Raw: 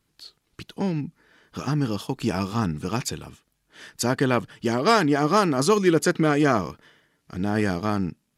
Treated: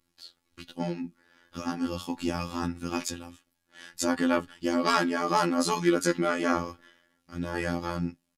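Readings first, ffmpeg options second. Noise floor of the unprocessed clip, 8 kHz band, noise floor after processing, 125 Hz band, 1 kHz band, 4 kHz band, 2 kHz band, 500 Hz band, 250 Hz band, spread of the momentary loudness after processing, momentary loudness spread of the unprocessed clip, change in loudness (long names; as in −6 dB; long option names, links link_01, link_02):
−73 dBFS, −3.5 dB, −77 dBFS, −10.5 dB, −4.0 dB, −3.5 dB, −4.0 dB, −6.5 dB, −5.0 dB, 15 LU, 13 LU, −5.5 dB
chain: -af "aecho=1:1:3.6:0.81,afftfilt=real='hypot(re,im)*cos(PI*b)':imag='0':win_size=2048:overlap=0.75,flanger=delay=5.9:depth=5:regen=74:speed=0.25:shape=triangular,volume=2dB"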